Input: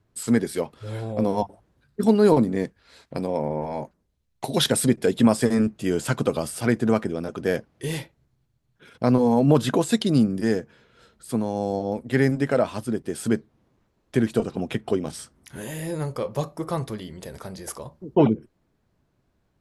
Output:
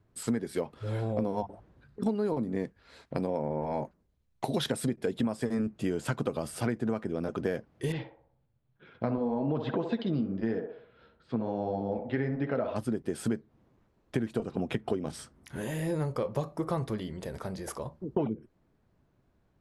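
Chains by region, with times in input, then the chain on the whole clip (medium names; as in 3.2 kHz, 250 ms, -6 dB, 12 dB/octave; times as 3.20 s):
1.42–2.06 s: treble shelf 6.9 kHz -9.5 dB + compressor with a negative ratio -29 dBFS, ratio -0.5
7.92–12.76 s: low-pass 4.1 kHz 24 dB/octave + flange 1.1 Hz, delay 5.2 ms, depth 8.2 ms, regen -46% + band-passed feedback delay 62 ms, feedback 53%, band-pass 690 Hz, level -6 dB
whole clip: treble shelf 3.4 kHz -8.5 dB; compression 10:1, threshold -26 dBFS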